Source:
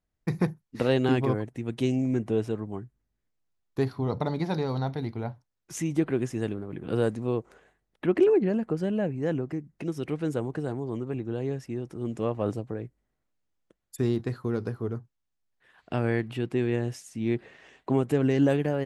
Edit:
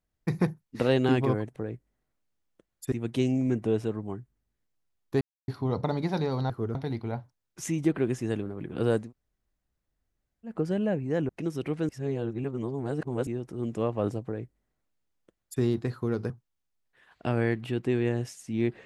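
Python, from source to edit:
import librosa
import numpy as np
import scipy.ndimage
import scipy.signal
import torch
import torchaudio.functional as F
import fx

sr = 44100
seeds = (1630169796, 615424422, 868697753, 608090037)

y = fx.edit(x, sr, fx.insert_silence(at_s=3.85, length_s=0.27),
    fx.room_tone_fill(start_s=7.17, length_s=1.46, crossfade_s=0.16),
    fx.cut(start_s=9.41, length_s=0.3),
    fx.reverse_span(start_s=10.31, length_s=1.38),
    fx.duplicate(start_s=12.67, length_s=1.36, to_s=1.56),
    fx.move(start_s=14.72, length_s=0.25, to_s=4.87), tone=tone)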